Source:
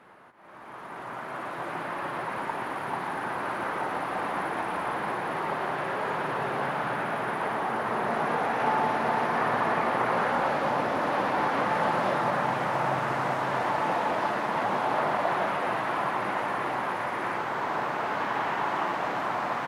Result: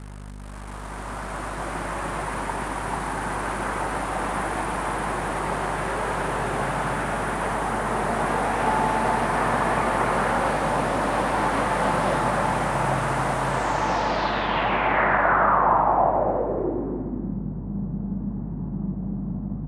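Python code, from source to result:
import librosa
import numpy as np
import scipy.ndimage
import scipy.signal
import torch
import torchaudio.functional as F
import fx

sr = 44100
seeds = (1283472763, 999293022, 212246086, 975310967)

p1 = fx.low_shelf(x, sr, hz=160.0, db=9.0)
p2 = fx.add_hum(p1, sr, base_hz=50, snr_db=12)
p3 = fx.quant_dither(p2, sr, seeds[0], bits=6, dither='none')
p4 = p2 + (p3 * 10.0 ** (-11.0 / 20.0))
p5 = fx.filter_sweep_lowpass(p4, sr, from_hz=9200.0, to_hz=190.0, start_s=13.46, end_s=17.39, q=3.9)
y = p5 + fx.echo_single(p5, sr, ms=284, db=-9.5, dry=0)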